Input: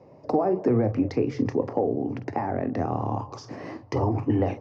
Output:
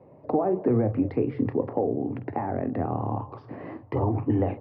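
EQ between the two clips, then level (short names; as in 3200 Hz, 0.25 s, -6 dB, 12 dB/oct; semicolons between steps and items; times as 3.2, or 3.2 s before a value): LPF 4600 Hz 24 dB/oct; air absorption 430 m; 0.0 dB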